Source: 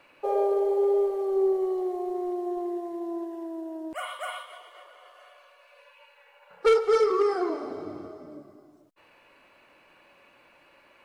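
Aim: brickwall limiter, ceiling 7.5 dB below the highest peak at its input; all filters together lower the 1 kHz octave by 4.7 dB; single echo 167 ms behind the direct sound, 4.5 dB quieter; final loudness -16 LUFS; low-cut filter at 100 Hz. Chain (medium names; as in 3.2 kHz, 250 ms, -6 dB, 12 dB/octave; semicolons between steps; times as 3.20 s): high-pass 100 Hz; peaking EQ 1 kHz -7 dB; peak limiter -22 dBFS; delay 167 ms -4.5 dB; trim +14 dB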